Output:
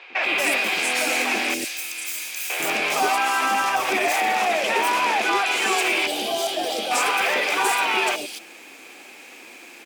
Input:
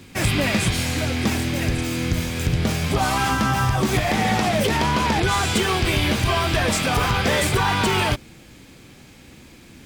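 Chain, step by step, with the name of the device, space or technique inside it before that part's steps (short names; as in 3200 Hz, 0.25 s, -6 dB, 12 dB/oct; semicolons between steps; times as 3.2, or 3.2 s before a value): laptop speaker (HPF 350 Hz 24 dB/oct; bell 740 Hz +5 dB 0.52 oct; bell 2500 Hz +8.5 dB 0.36 oct; limiter -16.5 dBFS, peak gain reduction 9.5 dB); 1.54–2.5 pre-emphasis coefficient 0.97; 6.07–6.91 spectral gain 870–2800 Hz -14 dB; three bands offset in time mids, lows, highs 0.1/0.23 s, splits 520/3900 Hz; gain +5 dB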